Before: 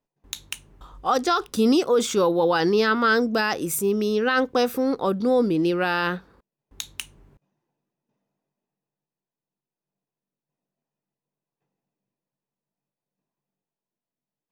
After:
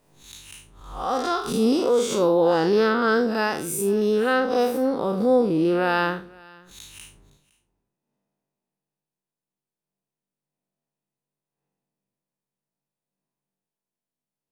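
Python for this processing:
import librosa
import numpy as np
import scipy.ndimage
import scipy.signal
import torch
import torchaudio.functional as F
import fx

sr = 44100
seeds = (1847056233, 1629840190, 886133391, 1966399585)

y = fx.spec_blur(x, sr, span_ms=133.0)
y = fx.peak_eq(y, sr, hz=9300.0, db=5.5, octaves=0.33)
y = y + 10.0 ** (-22.5 / 20.0) * np.pad(y, (int(511 * sr / 1000.0), 0))[:len(y)]
y = fx.dynamic_eq(y, sr, hz=640.0, q=0.85, threshold_db=-30.0, ratio=4.0, max_db=5)
y = fx.pre_swell(y, sr, db_per_s=75.0)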